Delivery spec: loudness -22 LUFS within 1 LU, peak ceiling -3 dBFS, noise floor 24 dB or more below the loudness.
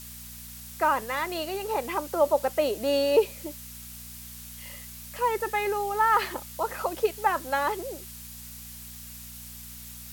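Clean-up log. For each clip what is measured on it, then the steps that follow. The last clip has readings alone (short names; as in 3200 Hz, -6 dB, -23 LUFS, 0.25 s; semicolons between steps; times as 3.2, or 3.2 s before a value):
hum 60 Hz; harmonics up to 240 Hz; hum level -46 dBFS; noise floor -43 dBFS; noise floor target -51 dBFS; loudness -27.0 LUFS; peak -10.0 dBFS; loudness target -22.0 LUFS
-> de-hum 60 Hz, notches 4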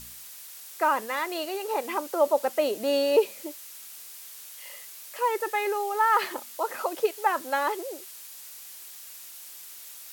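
hum none; noise floor -45 dBFS; noise floor target -51 dBFS
-> denoiser 6 dB, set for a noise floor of -45 dBFS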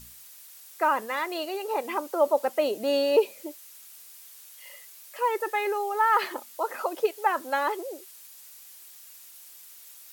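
noise floor -49 dBFS; noise floor target -51 dBFS
-> denoiser 6 dB, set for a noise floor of -49 dBFS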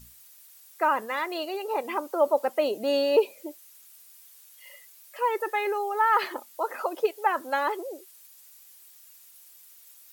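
noise floor -53 dBFS; loudness -27.0 LUFS; peak -10.0 dBFS; loudness target -22.0 LUFS
-> gain +5 dB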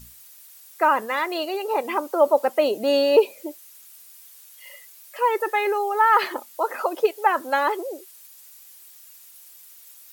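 loudness -22.0 LUFS; peak -5.0 dBFS; noise floor -48 dBFS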